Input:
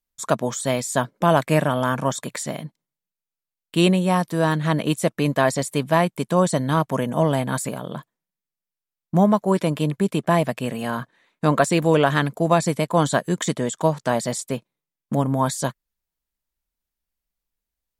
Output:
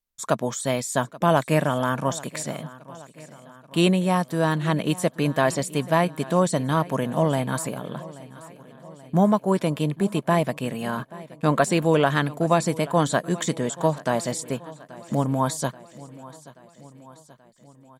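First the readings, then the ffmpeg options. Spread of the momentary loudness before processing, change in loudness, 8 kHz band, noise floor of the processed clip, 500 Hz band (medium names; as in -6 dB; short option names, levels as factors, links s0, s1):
11 LU, -2.0 dB, -2.0 dB, -54 dBFS, -2.0 dB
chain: -af "aecho=1:1:831|1662|2493|3324|4155:0.106|0.0625|0.0369|0.0218|0.0128,volume=0.794"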